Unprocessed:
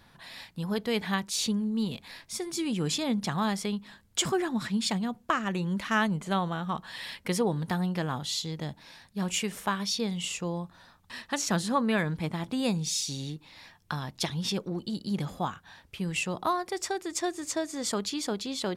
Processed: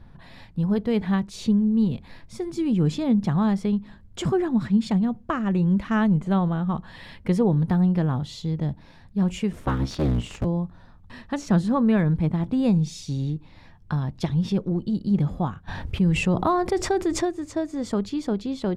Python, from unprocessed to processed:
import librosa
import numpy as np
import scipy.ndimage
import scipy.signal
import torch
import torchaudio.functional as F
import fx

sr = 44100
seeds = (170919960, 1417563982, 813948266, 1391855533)

y = fx.cycle_switch(x, sr, every=3, mode='inverted', at=(9.52, 10.44), fade=0.02)
y = fx.tilt_eq(y, sr, slope=-4.0)
y = fx.env_flatten(y, sr, amount_pct=50, at=(15.67, 17.23), fade=0.02)